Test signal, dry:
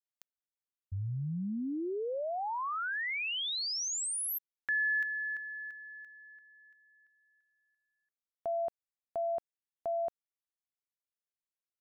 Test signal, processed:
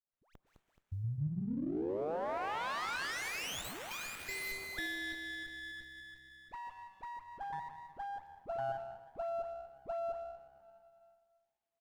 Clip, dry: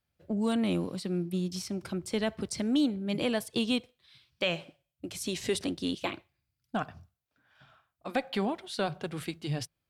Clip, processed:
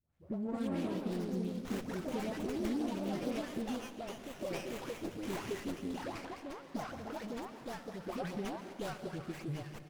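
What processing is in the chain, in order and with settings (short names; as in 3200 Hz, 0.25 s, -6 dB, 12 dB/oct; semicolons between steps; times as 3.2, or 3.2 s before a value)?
compressor 3:1, threshold -40 dBFS; dispersion highs, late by 0.137 s, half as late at 1100 Hz; on a send: frequency-shifting echo 0.235 s, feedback 37%, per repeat +66 Hz, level -22.5 dB; on the sum: echoes that change speed 0.265 s, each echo +3 st, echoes 2; plate-style reverb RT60 2.1 s, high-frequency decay 0.75×, pre-delay 0.11 s, DRR 9.5 dB; running maximum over 9 samples; gain +1 dB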